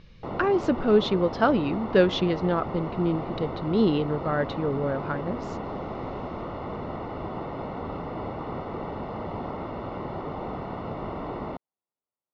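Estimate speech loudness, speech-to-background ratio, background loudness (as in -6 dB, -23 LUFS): -25.5 LUFS, 9.0 dB, -34.5 LUFS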